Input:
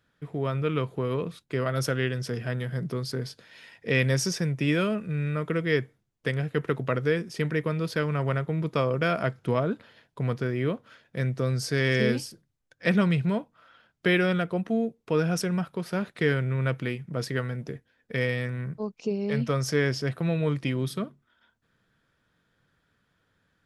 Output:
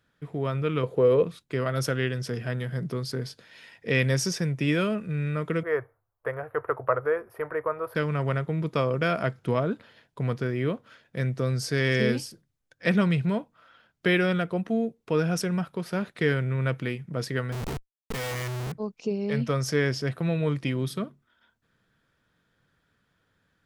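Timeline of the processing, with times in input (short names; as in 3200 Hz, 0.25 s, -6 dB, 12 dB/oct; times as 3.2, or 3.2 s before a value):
0.83–1.23 bell 500 Hz +13.5 dB 0.64 oct
5.63–7.95 EQ curve 110 Hz 0 dB, 170 Hz -26 dB, 550 Hz +5 dB, 1200 Hz +8 dB, 3900 Hz -26 dB, 7300 Hz -27 dB, 12000 Hz +2 dB
17.52–18.72 Schmitt trigger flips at -42 dBFS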